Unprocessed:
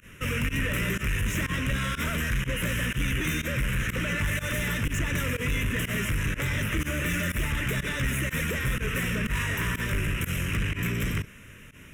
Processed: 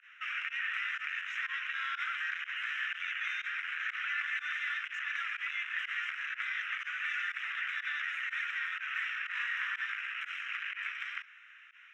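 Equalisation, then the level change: steep high-pass 1.3 kHz 48 dB/octave; low-pass 1.9 kHz 6 dB/octave; distance through air 200 m; +2.5 dB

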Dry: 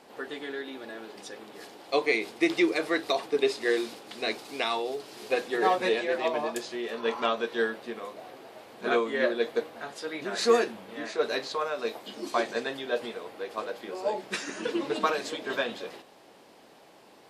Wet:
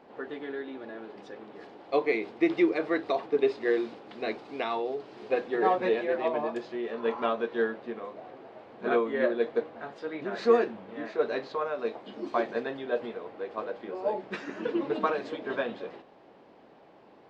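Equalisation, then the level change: tape spacing loss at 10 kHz 34 dB; +2.0 dB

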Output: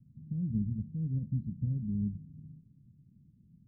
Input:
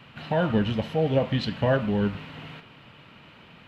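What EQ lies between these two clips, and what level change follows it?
inverse Chebyshev low-pass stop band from 700 Hz, stop band 60 dB; -4.5 dB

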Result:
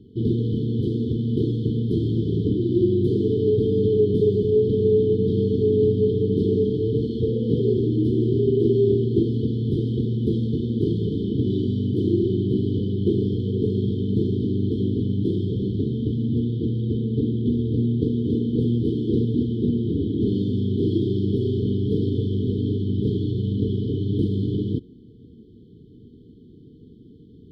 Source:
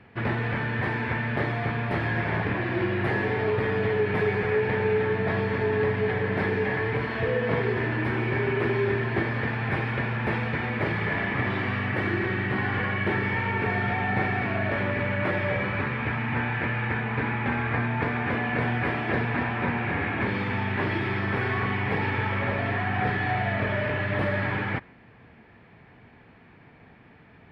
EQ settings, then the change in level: brick-wall FIR band-stop 480–3000 Hz; bass shelf 120 Hz +7.5 dB; peaking EQ 300 Hz +9 dB 1.4 oct; 0.0 dB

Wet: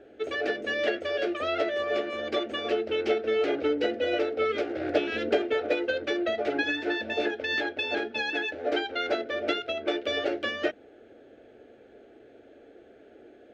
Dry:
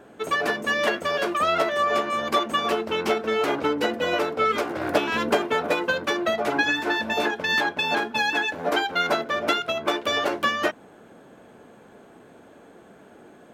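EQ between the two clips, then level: distance through air 200 m; hum notches 50/100/150/200/250 Hz; static phaser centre 420 Hz, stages 4; 0.0 dB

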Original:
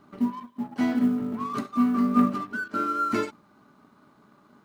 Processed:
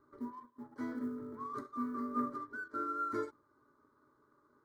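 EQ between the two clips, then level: treble shelf 2.3 kHz -9 dB; static phaser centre 730 Hz, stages 6; -8.0 dB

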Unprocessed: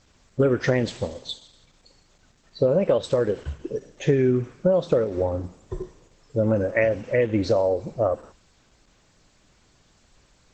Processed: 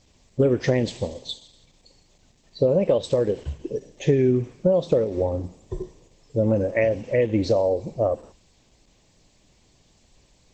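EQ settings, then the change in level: peaking EQ 1.4 kHz -12 dB 0.65 oct; +1.0 dB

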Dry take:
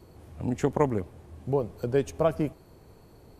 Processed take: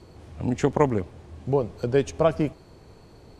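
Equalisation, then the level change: distance through air 92 m; treble shelf 3 kHz +9.5 dB; +3.5 dB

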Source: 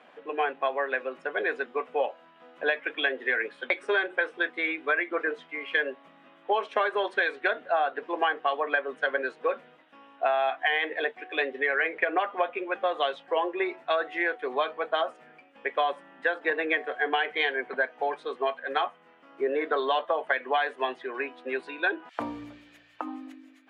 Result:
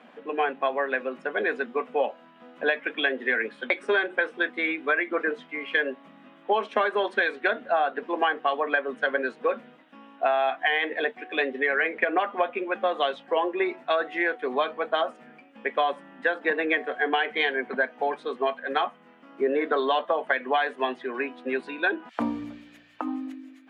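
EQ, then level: peaking EQ 220 Hz +13.5 dB 0.55 oct; +1.5 dB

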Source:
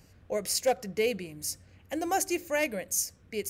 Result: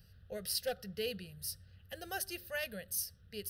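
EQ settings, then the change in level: peaking EQ 700 Hz -14 dB 1.4 oct; static phaser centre 1.5 kHz, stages 8; 0.0 dB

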